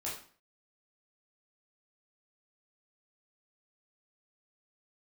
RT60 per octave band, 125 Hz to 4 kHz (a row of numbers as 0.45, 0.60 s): 0.45, 0.50, 0.45, 0.45, 0.45, 0.40 s